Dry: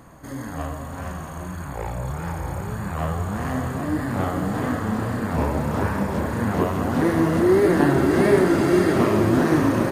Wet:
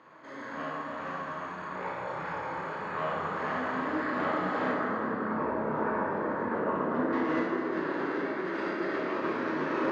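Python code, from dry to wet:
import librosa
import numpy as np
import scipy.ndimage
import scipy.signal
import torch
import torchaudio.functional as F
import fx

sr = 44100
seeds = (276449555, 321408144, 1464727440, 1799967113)

y = fx.envelope_sharpen(x, sr, power=1.5, at=(4.71, 7.13))
y = fx.bandpass_edges(y, sr, low_hz=510.0, high_hz=5900.0)
y = fx.peak_eq(y, sr, hz=730.0, db=-10.0, octaves=0.36)
y = fx.over_compress(y, sr, threshold_db=-30.0, ratio=-1.0)
y = fx.air_absorb(y, sr, metres=200.0)
y = fx.room_early_taps(y, sr, ms=(32, 59), db=(-6.0, -6.5))
y = fx.rev_plate(y, sr, seeds[0], rt60_s=3.7, hf_ratio=0.5, predelay_ms=0, drr_db=-2.0)
y = y * 10.0 ** (-5.0 / 20.0)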